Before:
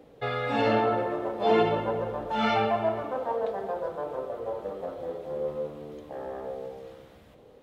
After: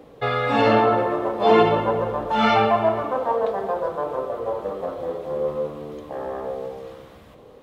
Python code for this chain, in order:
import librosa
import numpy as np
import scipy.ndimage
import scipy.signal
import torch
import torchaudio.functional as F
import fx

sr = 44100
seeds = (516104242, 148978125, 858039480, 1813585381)

y = fx.peak_eq(x, sr, hz=1100.0, db=7.0, octaves=0.27)
y = y * librosa.db_to_amplitude(6.5)